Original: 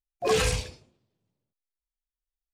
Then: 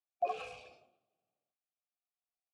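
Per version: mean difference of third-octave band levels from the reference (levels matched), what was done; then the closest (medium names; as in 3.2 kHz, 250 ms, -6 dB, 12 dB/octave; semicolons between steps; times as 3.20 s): 10.0 dB: treble shelf 9.4 kHz +5 dB; band-stop 1 kHz, Q 5.9; compression 6:1, threshold -36 dBFS, peak gain reduction 15.5 dB; vowel filter a; trim +9 dB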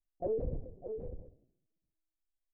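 16.0 dB: inverse Chebyshev low-pass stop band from 1.2 kHz, stop band 40 dB; delay 601 ms -17.5 dB; LPC vocoder at 8 kHz pitch kept; compression 2.5:1, threshold -45 dBFS, peak gain reduction 15.5 dB; trim +6 dB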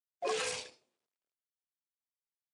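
5.5 dB: companding laws mixed up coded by A; high-pass 400 Hz 12 dB/octave; compression, threshold -27 dBFS, peak gain reduction 6 dB; resampled via 22.05 kHz; trim -3.5 dB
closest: third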